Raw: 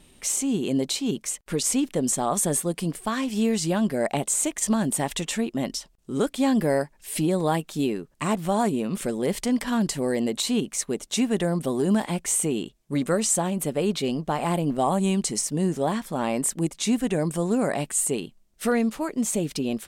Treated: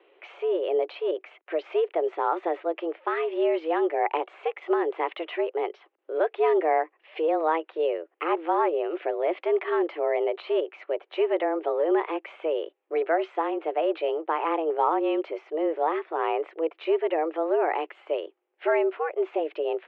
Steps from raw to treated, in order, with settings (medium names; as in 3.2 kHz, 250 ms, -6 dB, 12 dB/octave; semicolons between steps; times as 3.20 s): mistuned SSB +160 Hz 190–2600 Hz